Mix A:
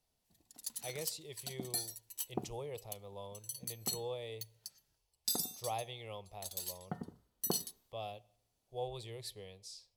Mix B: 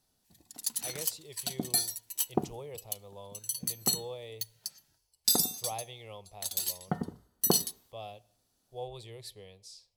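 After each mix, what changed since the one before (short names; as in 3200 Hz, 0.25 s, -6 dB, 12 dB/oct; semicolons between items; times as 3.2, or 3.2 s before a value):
background +9.5 dB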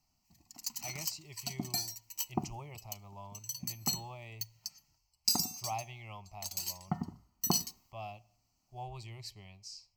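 speech +4.0 dB; master: add fixed phaser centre 2400 Hz, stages 8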